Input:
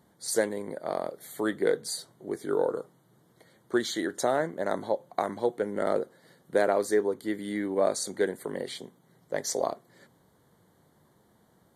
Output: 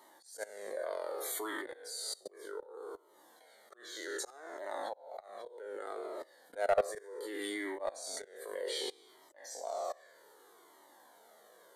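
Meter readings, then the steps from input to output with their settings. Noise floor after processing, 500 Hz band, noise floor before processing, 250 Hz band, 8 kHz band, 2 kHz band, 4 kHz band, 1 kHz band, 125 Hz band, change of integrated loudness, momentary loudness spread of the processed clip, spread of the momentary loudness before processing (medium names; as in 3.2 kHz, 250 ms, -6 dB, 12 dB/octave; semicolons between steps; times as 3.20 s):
-63 dBFS, -10.5 dB, -65 dBFS, -15.5 dB, -7.5 dB, -7.5 dB, -4.0 dB, -8.0 dB, under -20 dB, -10.0 dB, 12 LU, 10 LU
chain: spectral sustain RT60 0.67 s; high-pass 390 Hz 24 dB/octave; level held to a coarse grid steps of 23 dB; slow attack 493 ms; saturation -29 dBFS, distortion -14 dB; Shepard-style flanger falling 0.65 Hz; trim +12.5 dB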